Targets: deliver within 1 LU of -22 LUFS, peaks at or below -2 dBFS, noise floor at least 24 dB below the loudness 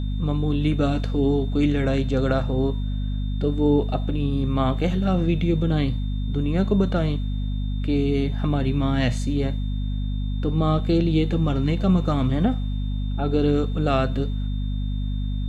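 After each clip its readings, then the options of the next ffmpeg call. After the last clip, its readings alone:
hum 50 Hz; harmonics up to 250 Hz; hum level -23 dBFS; steady tone 3600 Hz; tone level -46 dBFS; loudness -23.5 LUFS; peak -7.0 dBFS; loudness target -22.0 LUFS
-> -af "bandreject=f=50:t=h:w=6,bandreject=f=100:t=h:w=6,bandreject=f=150:t=h:w=6,bandreject=f=200:t=h:w=6,bandreject=f=250:t=h:w=6"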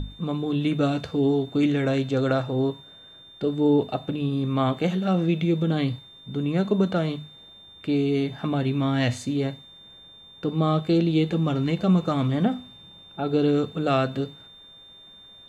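hum none; steady tone 3600 Hz; tone level -46 dBFS
-> -af "bandreject=f=3.6k:w=30"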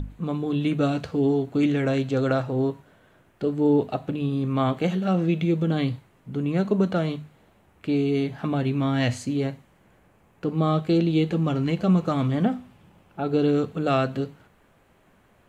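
steady tone none; loudness -24.5 LUFS; peak -9.0 dBFS; loudness target -22.0 LUFS
-> -af "volume=2.5dB"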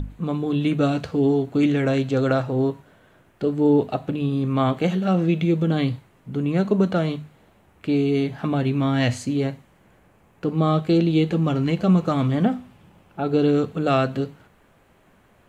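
loudness -22.0 LUFS; peak -6.5 dBFS; noise floor -58 dBFS

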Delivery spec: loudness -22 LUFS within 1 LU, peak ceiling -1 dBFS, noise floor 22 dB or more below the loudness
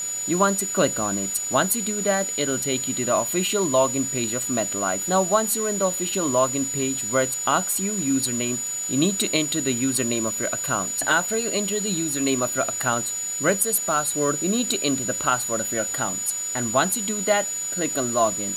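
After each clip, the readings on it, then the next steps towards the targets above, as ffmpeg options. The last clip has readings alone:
steady tone 6900 Hz; tone level -26 dBFS; noise floor -29 dBFS; noise floor target -44 dBFS; loudness -22.0 LUFS; peak -6.5 dBFS; loudness target -22.0 LUFS
-> -af "bandreject=f=6.9k:w=30"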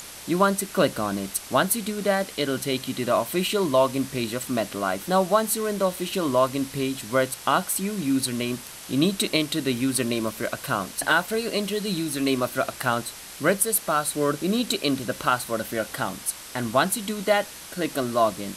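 steady tone none; noise floor -41 dBFS; noise floor target -47 dBFS
-> -af "afftdn=nr=6:nf=-41"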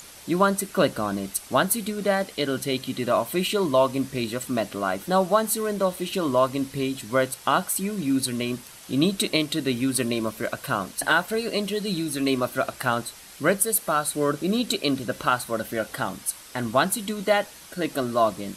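noise floor -45 dBFS; noise floor target -47 dBFS
-> -af "afftdn=nr=6:nf=-45"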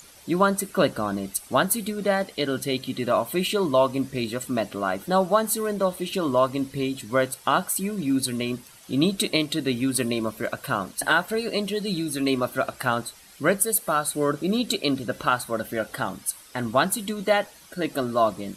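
noise floor -50 dBFS; loudness -25.0 LUFS; peak -7.0 dBFS; loudness target -22.0 LUFS
-> -af "volume=3dB"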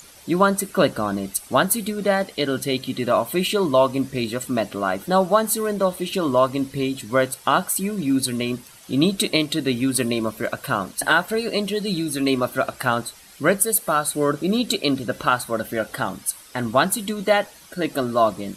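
loudness -22.0 LUFS; peak -4.0 dBFS; noise floor -47 dBFS

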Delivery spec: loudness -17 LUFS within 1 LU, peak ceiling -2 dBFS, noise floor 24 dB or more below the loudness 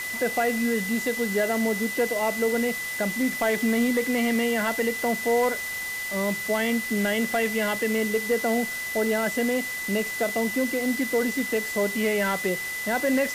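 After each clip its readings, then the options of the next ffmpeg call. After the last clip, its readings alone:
steady tone 2000 Hz; tone level -30 dBFS; noise floor -32 dBFS; noise floor target -49 dBFS; loudness -25.0 LUFS; peak -13.5 dBFS; loudness target -17.0 LUFS
-> -af "bandreject=f=2k:w=30"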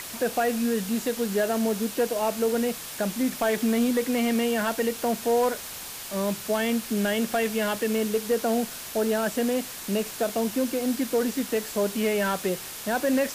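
steady tone none; noise floor -38 dBFS; noise floor target -50 dBFS
-> -af "afftdn=nr=12:nf=-38"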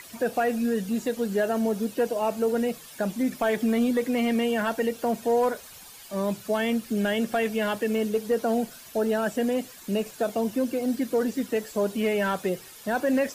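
noise floor -46 dBFS; noise floor target -51 dBFS
-> -af "afftdn=nr=6:nf=-46"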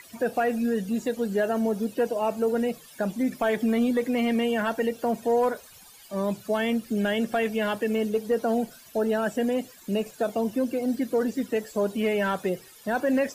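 noise floor -50 dBFS; noise floor target -51 dBFS
-> -af "afftdn=nr=6:nf=-50"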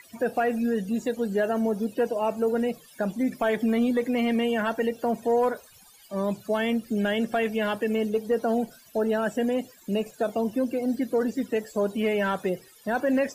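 noise floor -54 dBFS; loudness -26.5 LUFS; peak -15.5 dBFS; loudness target -17.0 LUFS
-> -af "volume=9.5dB"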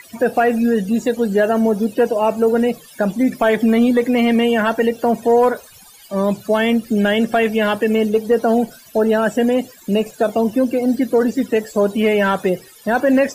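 loudness -17.0 LUFS; peak -6.0 dBFS; noise floor -44 dBFS

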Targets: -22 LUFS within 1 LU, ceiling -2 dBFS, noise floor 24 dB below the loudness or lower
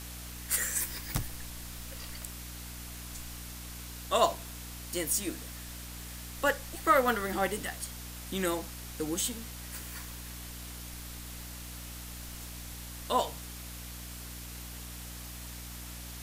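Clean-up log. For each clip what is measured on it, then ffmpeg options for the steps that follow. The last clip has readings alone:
hum 60 Hz; harmonics up to 300 Hz; hum level -43 dBFS; noise floor -44 dBFS; noise floor target -59 dBFS; loudness -35.0 LUFS; peak -10.5 dBFS; loudness target -22.0 LUFS
-> -af "bandreject=f=60:t=h:w=6,bandreject=f=120:t=h:w=6,bandreject=f=180:t=h:w=6,bandreject=f=240:t=h:w=6,bandreject=f=300:t=h:w=6"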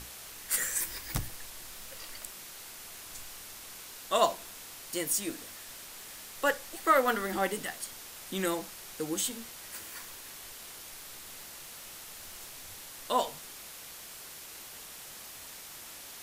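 hum none; noise floor -47 dBFS; noise floor target -59 dBFS
-> -af "afftdn=nr=12:nf=-47"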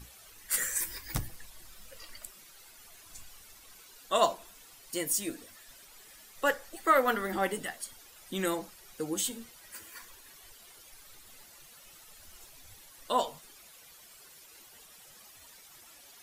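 noise floor -55 dBFS; noise floor target -56 dBFS
-> -af "afftdn=nr=6:nf=-55"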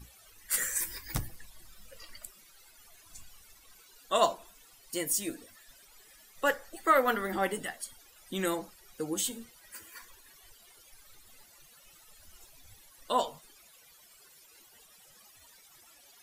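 noise floor -59 dBFS; loudness -31.5 LUFS; peak -10.5 dBFS; loudness target -22.0 LUFS
-> -af "volume=9.5dB,alimiter=limit=-2dB:level=0:latency=1"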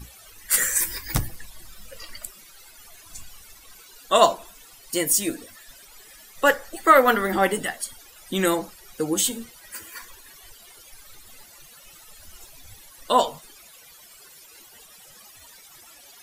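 loudness -22.0 LUFS; peak -2.0 dBFS; noise floor -49 dBFS

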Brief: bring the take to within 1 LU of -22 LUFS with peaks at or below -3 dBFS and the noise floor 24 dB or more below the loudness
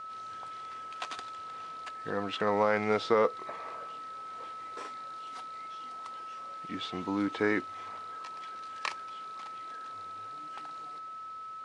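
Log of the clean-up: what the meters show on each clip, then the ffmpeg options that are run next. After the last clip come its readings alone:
steady tone 1300 Hz; tone level -40 dBFS; loudness -35.5 LUFS; peak -11.0 dBFS; loudness target -22.0 LUFS
-> -af "bandreject=f=1.3k:w=30"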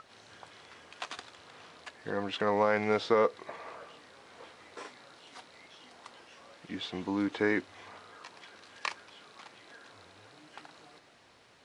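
steady tone none; loudness -32.0 LUFS; peak -11.0 dBFS; loudness target -22.0 LUFS
-> -af "volume=10dB,alimiter=limit=-3dB:level=0:latency=1"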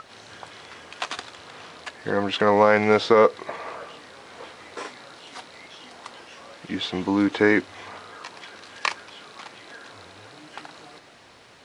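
loudness -22.0 LUFS; peak -3.0 dBFS; noise floor -51 dBFS

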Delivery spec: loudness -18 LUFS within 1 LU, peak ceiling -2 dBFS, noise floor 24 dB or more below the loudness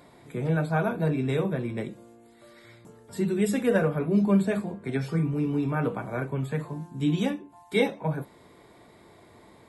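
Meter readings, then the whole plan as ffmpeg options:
loudness -27.5 LUFS; peak -10.5 dBFS; loudness target -18.0 LUFS
-> -af "volume=9.5dB,alimiter=limit=-2dB:level=0:latency=1"

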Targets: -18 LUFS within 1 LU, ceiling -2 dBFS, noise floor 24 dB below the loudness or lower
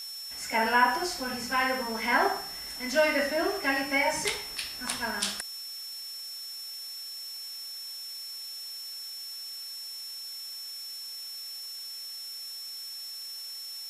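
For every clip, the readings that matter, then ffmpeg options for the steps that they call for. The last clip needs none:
steady tone 5400 Hz; tone level -38 dBFS; noise floor -40 dBFS; noise floor target -55 dBFS; loudness -31.0 LUFS; peak -9.5 dBFS; loudness target -18.0 LUFS
-> -af "bandreject=f=5.4k:w=30"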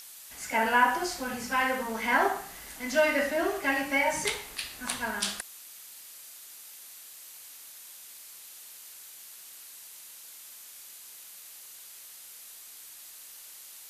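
steady tone none; noise floor -48 dBFS; noise floor target -52 dBFS
-> -af "afftdn=nr=6:nf=-48"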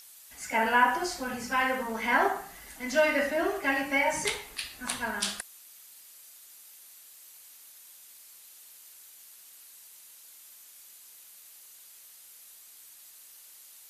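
noise floor -53 dBFS; loudness -28.0 LUFS; peak -10.0 dBFS; loudness target -18.0 LUFS
-> -af "volume=10dB,alimiter=limit=-2dB:level=0:latency=1"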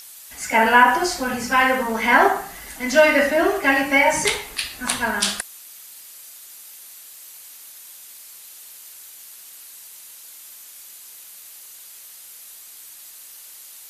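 loudness -18.5 LUFS; peak -2.0 dBFS; noise floor -43 dBFS

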